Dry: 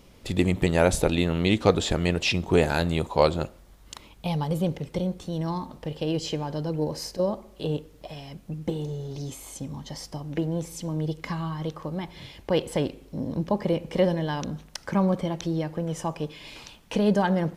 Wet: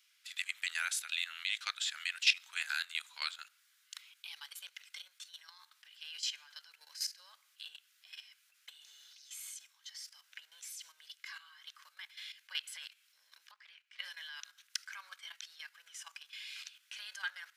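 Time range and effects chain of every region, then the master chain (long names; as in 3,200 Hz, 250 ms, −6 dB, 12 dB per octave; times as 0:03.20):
0:13.51–0:13.99: low-pass filter 1,100 Hz 6 dB per octave + parametric band 470 Hz −14.5 dB 2.3 octaves + highs frequency-modulated by the lows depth 0.21 ms
whole clip: Chebyshev high-pass filter 1,500 Hz, order 4; notch filter 1,800 Hz, Q 21; output level in coarse steps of 12 dB; level +1 dB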